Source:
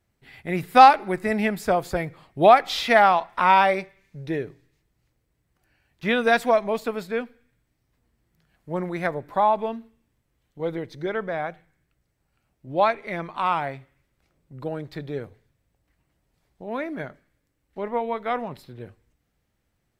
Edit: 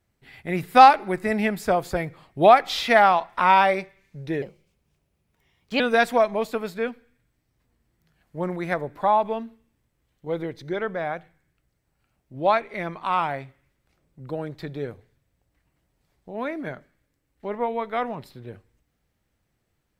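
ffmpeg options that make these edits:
-filter_complex "[0:a]asplit=3[s0][s1][s2];[s0]atrim=end=4.424[s3];[s1]atrim=start=4.42:end=6.13,asetpts=PTS-STARTPTS,asetrate=54684,aresample=44100,atrim=end_sample=60815,asetpts=PTS-STARTPTS[s4];[s2]atrim=start=6.126[s5];[s3][s4]acrossfade=d=0.004:c1=hsin:c2=hsin[s6];[s6][s5]acrossfade=d=0.004:c1=hsin:c2=hsin"

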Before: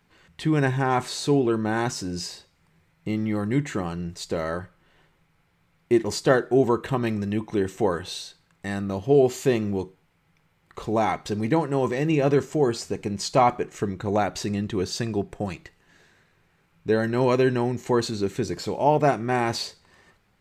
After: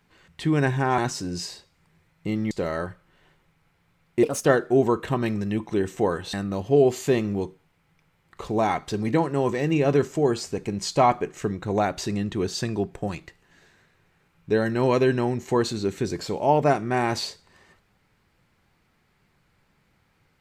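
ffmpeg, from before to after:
-filter_complex "[0:a]asplit=6[s0][s1][s2][s3][s4][s5];[s0]atrim=end=0.982[s6];[s1]atrim=start=1.788:end=3.322[s7];[s2]atrim=start=4.238:end=5.964[s8];[s3]atrim=start=5.96:end=6.26,asetpts=PTS-STARTPTS,asetrate=59535,aresample=44100[s9];[s4]atrim=start=6.256:end=8.142[s10];[s5]atrim=start=8.708[s11];[s6][s7]acrossfade=d=0.004:c1=hsin:c2=hsin[s12];[s12][s8]acrossfade=d=0.004:c1=hsin:c2=hsin[s13];[s13][s9]acrossfade=d=0.004:c1=hsin:c2=hsin[s14];[s14][s10]acrossfade=d=0.004:c1=hsin:c2=hsin[s15];[s15][s11]acrossfade=d=0.004:c1=hsin:c2=hsin"

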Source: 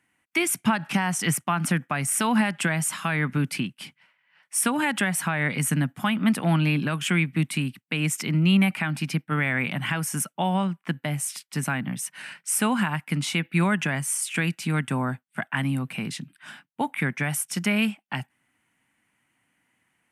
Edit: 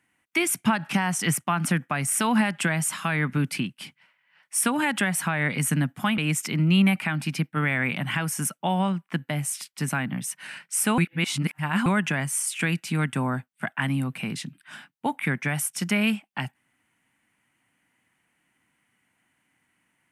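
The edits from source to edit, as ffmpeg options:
-filter_complex "[0:a]asplit=4[s0][s1][s2][s3];[s0]atrim=end=6.182[s4];[s1]atrim=start=7.928:end=12.732[s5];[s2]atrim=start=12.728:end=13.612,asetpts=PTS-STARTPTS,areverse[s6];[s3]atrim=start=13.608[s7];[s4][s5]acrossfade=d=0.004:c1=hsin:c2=hsin[s8];[s8][s6]acrossfade=d=0.004:c1=hsin:c2=hsin[s9];[s9][s7]acrossfade=d=0.004:c1=hsin:c2=hsin"

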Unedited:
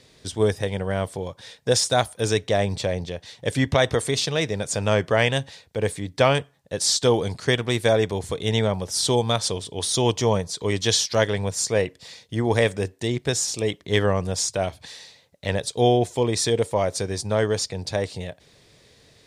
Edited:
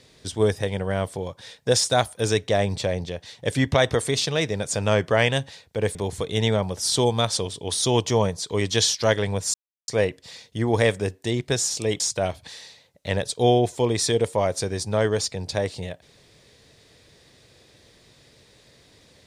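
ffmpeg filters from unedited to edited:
-filter_complex "[0:a]asplit=4[s0][s1][s2][s3];[s0]atrim=end=5.952[s4];[s1]atrim=start=8.058:end=11.65,asetpts=PTS-STARTPTS,afade=t=out:st=3.588:d=0.004:c=hsin,apad=pad_dur=0.34[s5];[s2]atrim=start=11.65:end=13.772,asetpts=PTS-STARTPTS,afade=t=in:d=0.004:c=hsin[s6];[s3]atrim=start=14.378[s7];[s5][s6]concat=n=2:v=0:a=1[s8];[s4][s8]acrossfade=d=0.004:c1=hsin:c2=hsin[s9];[s9][s7]acrossfade=d=0.004:c1=hsin:c2=hsin"

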